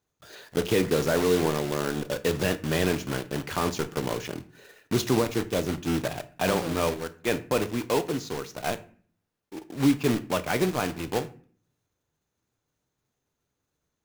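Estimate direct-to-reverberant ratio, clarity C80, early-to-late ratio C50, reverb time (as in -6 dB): 10.5 dB, 21.0 dB, 17.0 dB, 0.45 s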